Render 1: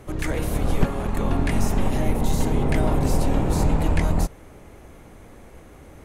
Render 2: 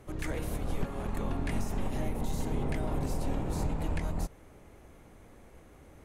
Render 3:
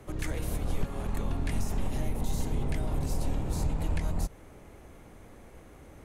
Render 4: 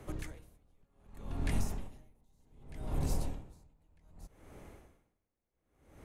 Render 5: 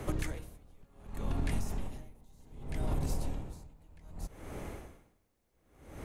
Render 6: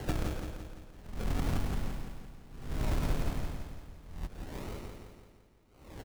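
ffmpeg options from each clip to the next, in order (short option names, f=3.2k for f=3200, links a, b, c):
-af "alimiter=limit=-13dB:level=0:latency=1:release=159,volume=-9dB"
-filter_complex "[0:a]acrossover=split=140|3000[a][b][c];[b]acompressor=threshold=-41dB:ratio=3[d];[a][d][c]amix=inputs=3:normalize=0,volume=3.5dB"
-af "aeval=exprs='val(0)*pow(10,-38*(0.5-0.5*cos(2*PI*0.65*n/s))/20)':c=same,volume=-1.5dB"
-af "acompressor=threshold=-39dB:ratio=8,volume=10.5dB"
-af "acrusher=samples=36:mix=1:aa=0.000001:lfo=1:lforange=21.6:lforate=1,aecho=1:1:170|340|510|680|850|1020|1190:0.501|0.266|0.141|0.0746|0.0395|0.021|0.0111,volume=1dB"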